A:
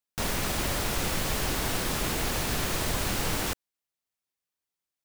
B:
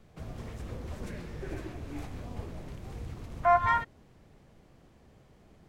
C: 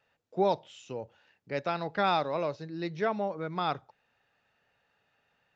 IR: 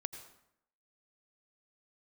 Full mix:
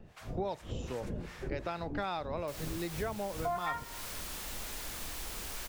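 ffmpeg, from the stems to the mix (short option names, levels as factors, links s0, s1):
-filter_complex "[0:a]aeval=exprs='0.0251*(abs(mod(val(0)/0.0251+3,4)-2)-1)':c=same,asubboost=boost=8.5:cutoff=52,adelay=2300,volume=0.531[s0];[1:a]acrossover=split=840[s1][s2];[s1]aeval=exprs='val(0)*(1-1/2+1/2*cos(2*PI*2.6*n/s))':c=same[s3];[s2]aeval=exprs='val(0)*(1-1/2-1/2*cos(2*PI*2.6*n/s))':c=same[s4];[s3][s4]amix=inputs=2:normalize=0,volume=1.41,asplit=2[s5][s6];[s6]volume=0.501[s7];[2:a]volume=1.19[s8];[3:a]atrim=start_sample=2205[s9];[s7][s9]afir=irnorm=-1:irlink=0[s10];[s0][s5][s8][s10]amix=inputs=4:normalize=0,acompressor=threshold=0.02:ratio=4"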